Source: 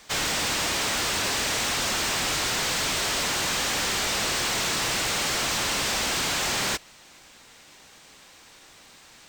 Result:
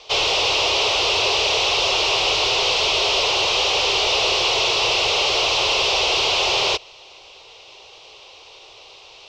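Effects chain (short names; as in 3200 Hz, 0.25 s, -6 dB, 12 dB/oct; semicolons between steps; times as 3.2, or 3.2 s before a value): EQ curve 110 Hz 0 dB, 240 Hz -19 dB, 400 Hz +10 dB, 800 Hz +7 dB, 1100 Hz +5 dB, 1700 Hz -12 dB, 2700 Hz +11 dB, 5600 Hz +3 dB, 9000 Hz -20 dB, 13000 Hz -22 dB; gain +2 dB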